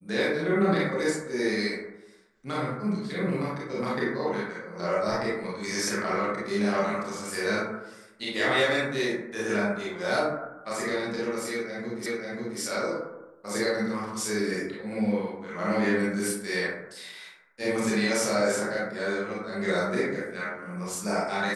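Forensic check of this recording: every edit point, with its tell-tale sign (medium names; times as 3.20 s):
12.06 s: repeat of the last 0.54 s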